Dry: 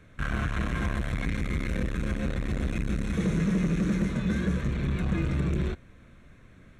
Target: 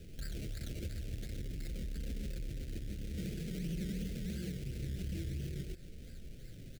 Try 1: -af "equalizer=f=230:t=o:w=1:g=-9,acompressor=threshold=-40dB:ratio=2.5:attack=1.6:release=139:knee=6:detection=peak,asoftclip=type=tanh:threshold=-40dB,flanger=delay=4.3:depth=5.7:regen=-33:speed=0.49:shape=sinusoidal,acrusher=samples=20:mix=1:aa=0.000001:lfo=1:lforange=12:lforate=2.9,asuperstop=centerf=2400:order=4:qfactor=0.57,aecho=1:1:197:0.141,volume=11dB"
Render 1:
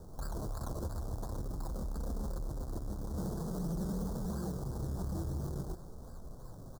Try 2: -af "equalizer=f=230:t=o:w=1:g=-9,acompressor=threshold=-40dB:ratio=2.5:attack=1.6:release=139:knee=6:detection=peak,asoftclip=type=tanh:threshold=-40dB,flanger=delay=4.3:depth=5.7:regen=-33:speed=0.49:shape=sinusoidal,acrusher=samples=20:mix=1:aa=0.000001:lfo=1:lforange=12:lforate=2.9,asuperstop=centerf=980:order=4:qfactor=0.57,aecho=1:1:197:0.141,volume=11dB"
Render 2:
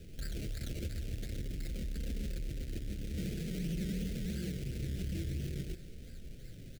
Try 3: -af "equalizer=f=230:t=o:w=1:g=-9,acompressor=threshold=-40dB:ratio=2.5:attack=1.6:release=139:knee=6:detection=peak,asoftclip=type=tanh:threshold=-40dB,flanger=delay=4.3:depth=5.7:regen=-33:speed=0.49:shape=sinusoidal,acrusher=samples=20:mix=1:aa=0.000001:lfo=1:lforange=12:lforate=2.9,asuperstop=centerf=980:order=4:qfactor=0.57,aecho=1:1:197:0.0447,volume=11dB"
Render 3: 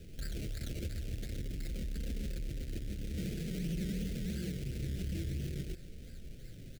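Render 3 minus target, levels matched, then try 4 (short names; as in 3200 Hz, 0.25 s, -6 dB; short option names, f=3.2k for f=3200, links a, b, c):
compressor: peak gain reduction -4 dB
-af "equalizer=f=230:t=o:w=1:g=-9,acompressor=threshold=-47dB:ratio=2.5:attack=1.6:release=139:knee=6:detection=peak,asoftclip=type=tanh:threshold=-40dB,flanger=delay=4.3:depth=5.7:regen=-33:speed=0.49:shape=sinusoidal,acrusher=samples=20:mix=1:aa=0.000001:lfo=1:lforange=12:lforate=2.9,asuperstop=centerf=980:order=4:qfactor=0.57,aecho=1:1:197:0.0447,volume=11dB"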